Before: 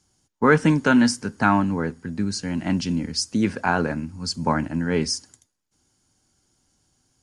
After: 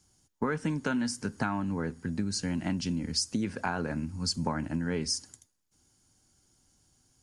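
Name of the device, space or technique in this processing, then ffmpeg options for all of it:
ASMR close-microphone chain: -af "lowshelf=f=150:g=4.5,acompressor=threshold=-24dB:ratio=8,highshelf=f=7.2k:g=6.5,volume=-3dB"

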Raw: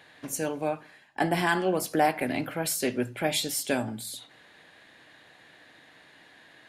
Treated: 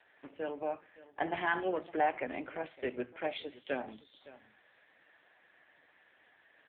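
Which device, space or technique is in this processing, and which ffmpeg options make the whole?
satellite phone: -filter_complex "[0:a]asplit=3[a][b][c];[a]afade=t=out:st=1.26:d=0.02[d];[b]equalizer=f=5.1k:w=0.44:g=2.5,afade=t=in:st=1.26:d=0.02,afade=t=out:st=1.8:d=0.02[e];[c]afade=t=in:st=1.8:d=0.02[f];[d][e][f]amix=inputs=3:normalize=0,highpass=340,lowpass=3.2k,aecho=1:1:562:0.119,volume=-5dB" -ar 8000 -c:a libopencore_amrnb -b:a 5900

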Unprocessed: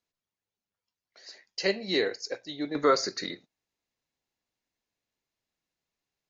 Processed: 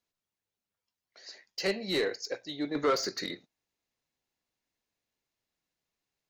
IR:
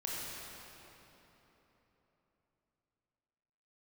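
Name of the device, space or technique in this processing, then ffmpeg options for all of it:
saturation between pre-emphasis and de-emphasis: -af "highshelf=f=2k:g=9,asoftclip=type=tanh:threshold=-19.5dB,highshelf=f=2k:g=-9"

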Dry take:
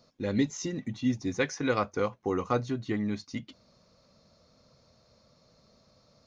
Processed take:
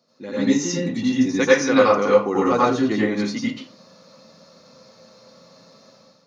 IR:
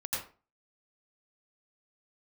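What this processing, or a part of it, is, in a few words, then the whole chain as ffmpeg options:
far laptop microphone: -filter_complex "[1:a]atrim=start_sample=2205[a];[0:a][a]afir=irnorm=-1:irlink=0,highpass=f=160:w=0.5412,highpass=f=160:w=1.3066,dynaudnorm=f=330:g=3:m=11dB"

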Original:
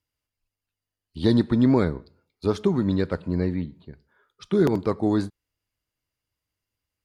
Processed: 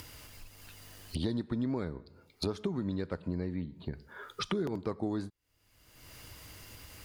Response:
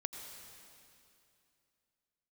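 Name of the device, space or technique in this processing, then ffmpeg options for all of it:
upward and downward compression: -af "acompressor=mode=upward:threshold=-29dB:ratio=2.5,acompressor=threshold=-35dB:ratio=6,volume=3.5dB"

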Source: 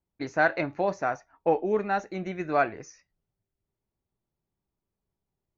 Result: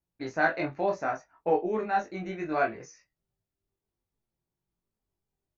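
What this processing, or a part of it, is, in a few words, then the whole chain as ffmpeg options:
double-tracked vocal: -filter_complex "[0:a]asplit=2[a][b];[b]adelay=23,volume=-5.5dB[c];[a][c]amix=inputs=2:normalize=0,flanger=delay=16.5:depth=4:speed=0.66"

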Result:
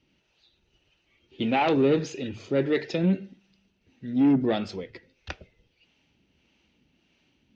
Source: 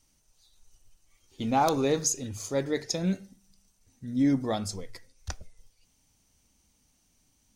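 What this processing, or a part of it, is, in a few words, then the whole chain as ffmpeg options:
guitar amplifier with harmonic tremolo: -filter_complex "[0:a]acrossover=split=440[a][b];[a]aeval=exprs='val(0)*(1-0.5/2+0.5/2*cos(2*PI*1.6*n/s))':c=same[c];[b]aeval=exprs='val(0)*(1-0.5/2-0.5/2*cos(2*PI*1.6*n/s))':c=same[d];[c][d]amix=inputs=2:normalize=0,asoftclip=type=tanh:threshold=-25dB,highpass=87,equalizer=f=100:t=q:w=4:g=-8,equalizer=f=360:t=q:w=4:g=6,equalizer=f=750:t=q:w=4:g=-4,equalizer=f=1.1k:t=q:w=4:g=-7,equalizer=f=2.7k:t=q:w=4:g=7,lowpass=f=3.6k:w=0.5412,lowpass=f=3.6k:w=1.3066,volume=8.5dB"

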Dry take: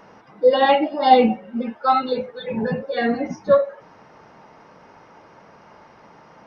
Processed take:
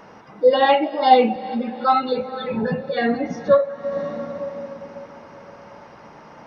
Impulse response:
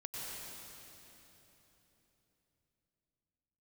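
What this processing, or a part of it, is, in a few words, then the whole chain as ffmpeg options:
ducked reverb: -filter_complex "[0:a]asettb=1/sr,asplit=3[a][b][c];[a]atrim=end=0.604[d];[b]atrim=start=0.6:end=1.36,asetpts=PTS-STARTPTS,afade=t=in:d=0.004:c=qsin,afade=t=out:st=0.756:d=0.004:c=qsin,highpass=250[e];[c]atrim=start=1.356[f];[d][e]acrossfade=d=0.004:c1=hsin:c2=qsin[g];[g][f]acrossfade=d=0.004:c1=qsin:c2=hsin,asplit=3[h][i][j];[1:a]atrim=start_sample=2205[k];[i][k]afir=irnorm=-1:irlink=0[l];[j]apad=whole_len=285033[m];[l][m]sidechaincompress=threshold=-36dB:ratio=8:attack=6.1:release=247,volume=-2dB[n];[h][n]amix=inputs=2:normalize=0"

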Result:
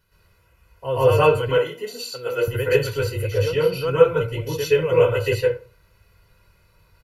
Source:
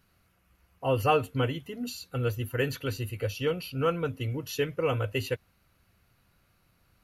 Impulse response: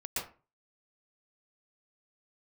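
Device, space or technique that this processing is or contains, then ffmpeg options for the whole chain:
microphone above a desk: -filter_complex "[0:a]aecho=1:1:2:0.73[a];[1:a]atrim=start_sample=2205[b];[a][b]afir=irnorm=-1:irlink=0,asettb=1/sr,asplit=3[c][d][e];[c]atrim=end=1.584[f];[d]atrim=start=1.58:end=2.48,asetpts=PTS-STARTPTS,afade=t=in:d=0.004:c=qsin,afade=t=out:st=0.896:d=0.004:c=qsin,highpass=300[g];[e]atrim=start=2.476[h];[f][g]acrossfade=d=0.004:c1=hsin:c2=qsin[i];[i][h]acrossfade=d=0.004:c1=qsin:c2=hsin,volume=3.5dB"

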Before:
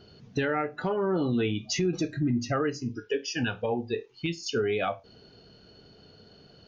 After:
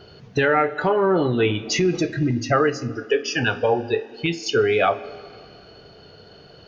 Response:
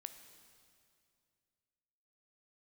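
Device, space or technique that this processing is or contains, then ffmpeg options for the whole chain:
filtered reverb send: -filter_complex "[0:a]asplit=2[a][b];[b]highpass=f=230:w=0.5412,highpass=f=230:w=1.3066,lowpass=3.3k[c];[1:a]atrim=start_sample=2205[d];[c][d]afir=irnorm=-1:irlink=0,volume=2dB[e];[a][e]amix=inputs=2:normalize=0,volume=6.5dB"

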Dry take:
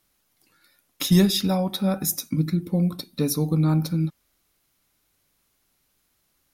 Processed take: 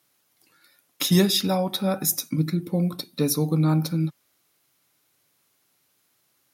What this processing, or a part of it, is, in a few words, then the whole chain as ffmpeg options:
low shelf boost with a cut just above: -af "highpass=f=120:w=0.5412,highpass=f=120:w=1.3066,lowshelf=f=69:g=6,equalizer=f=200:t=o:w=0.8:g=-5.5,volume=2dB"

